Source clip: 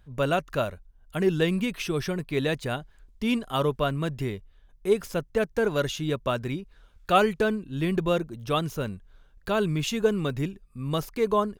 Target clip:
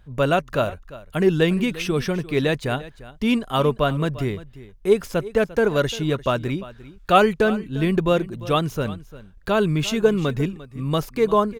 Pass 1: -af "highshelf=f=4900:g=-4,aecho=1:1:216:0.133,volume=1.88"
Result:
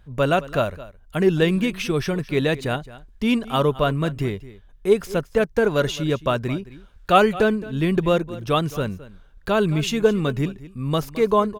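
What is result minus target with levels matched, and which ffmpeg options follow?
echo 132 ms early
-af "highshelf=f=4900:g=-4,aecho=1:1:348:0.133,volume=1.88"

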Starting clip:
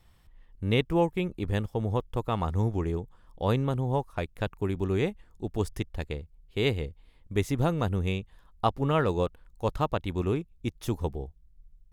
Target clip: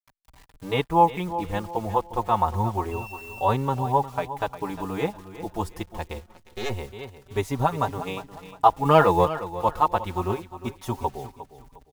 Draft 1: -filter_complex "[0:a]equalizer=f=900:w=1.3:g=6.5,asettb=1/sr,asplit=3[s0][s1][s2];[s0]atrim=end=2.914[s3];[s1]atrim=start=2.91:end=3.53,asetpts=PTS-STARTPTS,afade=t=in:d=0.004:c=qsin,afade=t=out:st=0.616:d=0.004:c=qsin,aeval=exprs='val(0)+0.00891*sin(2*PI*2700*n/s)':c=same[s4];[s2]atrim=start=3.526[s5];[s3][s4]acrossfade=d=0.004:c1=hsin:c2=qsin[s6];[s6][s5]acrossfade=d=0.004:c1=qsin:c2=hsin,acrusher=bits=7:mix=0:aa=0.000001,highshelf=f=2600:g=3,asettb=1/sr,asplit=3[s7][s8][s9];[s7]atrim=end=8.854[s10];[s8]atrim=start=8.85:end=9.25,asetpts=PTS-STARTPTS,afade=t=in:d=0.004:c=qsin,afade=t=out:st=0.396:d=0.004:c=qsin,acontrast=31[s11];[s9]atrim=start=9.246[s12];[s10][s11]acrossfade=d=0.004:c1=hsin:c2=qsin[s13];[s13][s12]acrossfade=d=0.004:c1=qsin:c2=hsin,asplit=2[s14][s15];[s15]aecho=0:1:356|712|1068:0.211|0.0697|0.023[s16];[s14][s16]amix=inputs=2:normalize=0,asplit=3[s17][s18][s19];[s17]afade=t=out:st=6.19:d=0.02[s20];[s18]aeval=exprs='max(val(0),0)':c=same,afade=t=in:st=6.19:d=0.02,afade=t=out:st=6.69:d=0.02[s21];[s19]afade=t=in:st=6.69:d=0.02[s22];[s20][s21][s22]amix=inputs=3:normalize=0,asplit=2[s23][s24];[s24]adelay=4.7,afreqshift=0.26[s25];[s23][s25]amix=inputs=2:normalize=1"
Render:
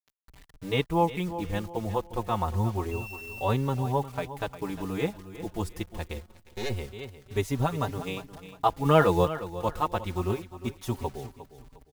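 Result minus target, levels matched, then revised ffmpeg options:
1 kHz band -3.5 dB
-filter_complex "[0:a]equalizer=f=900:w=1.3:g=16,asettb=1/sr,asplit=3[s0][s1][s2];[s0]atrim=end=2.914[s3];[s1]atrim=start=2.91:end=3.53,asetpts=PTS-STARTPTS,afade=t=in:d=0.004:c=qsin,afade=t=out:st=0.616:d=0.004:c=qsin,aeval=exprs='val(0)+0.00891*sin(2*PI*2700*n/s)':c=same[s4];[s2]atrim=start=3.526[s5];[s3][s4]acrossfade=d=0.004:c1=hsin:c2=qsin[s6];[s6][s5]acrossfade=d=0.004:c1=qsin:c2=hsin,acrusher=bits=7:mix=0:aa=0.000001,highshelf=f=2600:g=3,asettb=1/sr,asplit=3[s7][s8][s9];[s7]atrim=end=8.854[s10];[s8]atrim=start=8.85:end=9.25,asetpts=PTS-STARTPTS,afade=t=in:d=0.004:c=qsin,afade=t=out:st=0.396:d=0.004:c=qsin,acontrast=31[s11];[s9]atrim=start=9.246[s12];[s10][s11]acrossfade=d=0.004:c1=hsin:c2=qsin[s13];[s13][s12]acrossfade=d=0.004:c1=qsin:c2=hsin,asplit=2[s14][s15];[s15]aecho=0:1:356|712|1068:0.211|0.0697|0.023[s16];[s14][s16]amix=inputs=2:normalize=0,asplit=3[s17][s18][s19];[s17]afade=t=out:st=6.19:d=0.02[s20];[s18]aeval=exprs='max(val(0),0)':c=same,afade=t=in:st=6.19:d=0.02,afade=t=out:st=6.69:d=0.02[s21];[s19]afade=t=in:st=6.69:d=0.02[s22];[s20][s21][s22]amix=inputs=3:normalize=0,asplit=2[s23][s24];[s24]adelay=4.7,afreqshift=0.26[s25];[s23][s25]amix=inputs=2:normalize=1"

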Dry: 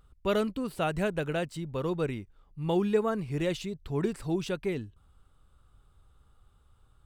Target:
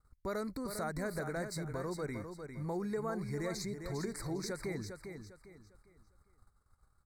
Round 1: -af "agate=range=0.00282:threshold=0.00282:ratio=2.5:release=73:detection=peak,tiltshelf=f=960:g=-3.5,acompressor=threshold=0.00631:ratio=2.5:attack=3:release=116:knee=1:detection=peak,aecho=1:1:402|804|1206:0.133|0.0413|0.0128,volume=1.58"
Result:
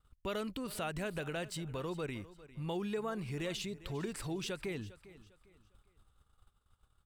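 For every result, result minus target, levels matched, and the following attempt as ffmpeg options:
echo-to-direct -10 dB; 4 kHz band +5.0 dB
-af "agate=range=0.00282:threshold=0.00282:ratio=2.5:release=73:detection=peak,tiltshelf=f=960:g=-3.5,acompressor=threshold=0.00631:ratio=2.5:attack=3:release=116:knee=1:detection=peak,aecho=1:1:402|804|1206|1608:0.422|0.131|0.0405|0.0126,volume=1.58"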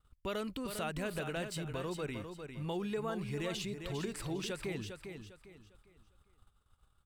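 4 kHz band +5.5 dB
-af "agate=range=0.00282:threshold=0.00282:ratio=2.5:release=73:detection=peak,asuperstop=centerf=3000:order=12:qfactor=1.8,tiltshelf=f=960:g=-3.5,acompressor=threshold=0.00631:ratio=2.5:attack=3:release=116:knee=1:detection=peak,aecho=1:1:402|804|1206|1608:0.422|0.131|0.0405|0.0126,volume=1.58"

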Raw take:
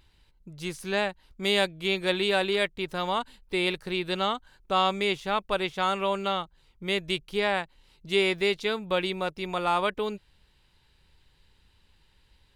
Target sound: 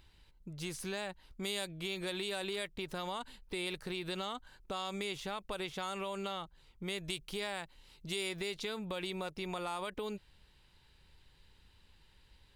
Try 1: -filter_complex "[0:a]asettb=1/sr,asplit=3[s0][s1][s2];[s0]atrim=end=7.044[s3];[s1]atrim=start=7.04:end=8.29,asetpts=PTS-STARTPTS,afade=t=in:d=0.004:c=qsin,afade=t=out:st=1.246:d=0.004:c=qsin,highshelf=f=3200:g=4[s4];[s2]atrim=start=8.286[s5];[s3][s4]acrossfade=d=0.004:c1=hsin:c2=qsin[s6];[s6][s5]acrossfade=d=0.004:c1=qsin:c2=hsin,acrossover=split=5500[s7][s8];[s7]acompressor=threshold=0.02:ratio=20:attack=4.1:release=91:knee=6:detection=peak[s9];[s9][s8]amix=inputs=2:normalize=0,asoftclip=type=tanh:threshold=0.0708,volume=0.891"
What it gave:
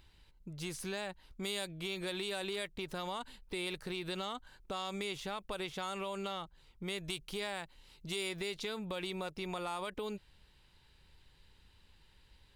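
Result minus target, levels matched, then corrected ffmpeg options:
saturation: distortion +13 dB
-filter_complex "[0:a]asettb=1/sr,asplit=3[s0][s1][s2];[s0]atrim=end=7.044[s3];[s1]atrim=start=7.04:end=8.29,asetpts=PTS-STARTPTS,afade=t=in:d=0.004:c=qsin,afade=t=out:st=1.246:d=0.004:c=qsin,highshelf=f=3200:g=4[s4];[s2]atrim=start=8.286[s5];[s3][s4]acrossfade=d=0.004:c1=hsin:c2=qsin[s6];[s6][s5]acrossfade=d=0.004:c1=qsin:c2=hsin,acrossover=split=5500[s7][s8];[s7]acompressor=threshold=0.02:ratio=20:attack=4.1:release=91:knee=6:detection=peak[s9];[s9][s8]amix=inputs=2:normalize=0,asoftclip=type=tanh:threshold=0.168,volume=0.891"

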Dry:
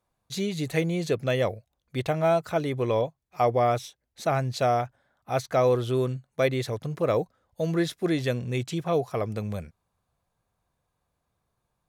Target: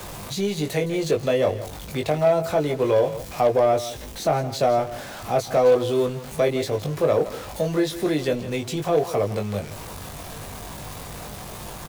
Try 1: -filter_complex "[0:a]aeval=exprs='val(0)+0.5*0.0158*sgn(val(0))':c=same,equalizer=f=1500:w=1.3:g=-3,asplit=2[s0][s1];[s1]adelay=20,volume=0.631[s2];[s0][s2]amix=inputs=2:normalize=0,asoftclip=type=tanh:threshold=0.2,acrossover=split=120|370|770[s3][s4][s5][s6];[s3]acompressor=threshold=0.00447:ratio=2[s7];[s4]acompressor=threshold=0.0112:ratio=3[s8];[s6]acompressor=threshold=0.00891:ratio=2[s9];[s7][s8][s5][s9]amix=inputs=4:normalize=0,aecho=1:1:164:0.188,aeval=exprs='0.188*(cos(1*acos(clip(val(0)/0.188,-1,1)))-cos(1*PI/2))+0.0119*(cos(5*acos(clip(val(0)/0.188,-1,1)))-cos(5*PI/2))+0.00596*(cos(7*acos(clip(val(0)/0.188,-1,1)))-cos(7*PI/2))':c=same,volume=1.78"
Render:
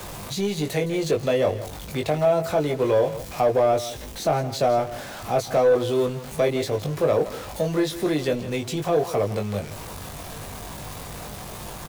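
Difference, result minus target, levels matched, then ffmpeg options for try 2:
saturation: distortion +17 dB
-filter_complex "[0:a]aeval=exprs='val(0)+0.5*0.0158*sgn(val(0))':c=same,equalizer=f=1500:w=1.3:g=-3,asplit=2[s0][s1];[s1]adelay=20,volume=0.631[s2];[s0][s2]amix=inputs=2:normalize=0,asoftclip=type=tanh:threshold=0.631,acrossover=split=120|370|770[s3][s4][s5][s6];[s3]acompressor=threshold=0.00447:ratio=2[s7];[s4]acompressor=threshold=0.0112:ratio=3[s8];[s6]acompressor=threshold=0.00891:ratio=2[s9];[s7][s8][s5][s9]amix=inputs=4:normalize=0,aecho=1:1:164:0.188,aeval=exprs='0.188*(cos(1*acos(clip(val(0)/0.188,-1,1)))-cos(1*PI/2))+0.0119*(cos(5*acos(clip(val(0)/0.188,-1,1)))-cos(5*PI/2))+0.00596*(cos(7*acos(clip(val(0)/0.188,-1,1)))-cos(7*PI/2))':c=same,volume=1.78"

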